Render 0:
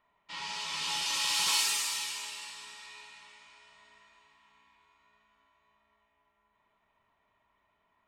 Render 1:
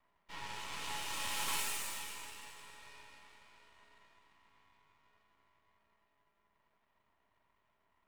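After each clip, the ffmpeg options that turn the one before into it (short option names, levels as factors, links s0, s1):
-af "equalizer=f=4900:t=o:w=1.2:g=-14,aeval=exprs='max(val(0),0)':c=same,volume=1.19"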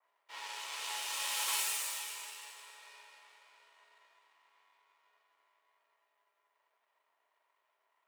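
-af "highpass=f=450:w=0.5412,highpass=f=450:w=1.3066,adynamicequalizer=threshold=0.002:dfrequency=2700:dqfactor=0.7:tfrequency=2700:tqfactor=0.7:attack=5:release=100:ratio=0.375:range=2.5:mode=boostabove:tftype=highshelf"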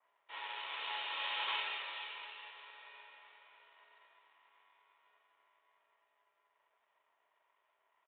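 -af "aresample=8000,aresample=44100,volume=1.12"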